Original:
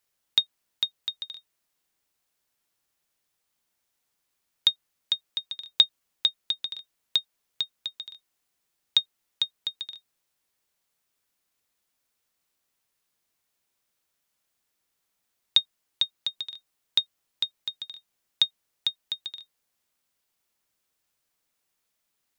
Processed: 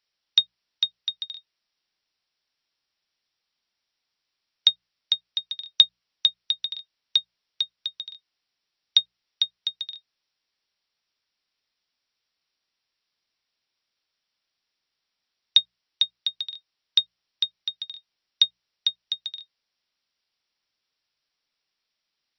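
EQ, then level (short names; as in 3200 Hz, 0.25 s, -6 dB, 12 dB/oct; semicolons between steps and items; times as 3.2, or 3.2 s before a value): brick-wall FIR low-pass 5800 Hz; high shelf 2500 Hz +12 dB; notches 60/120/180 Hz; -5.0 dB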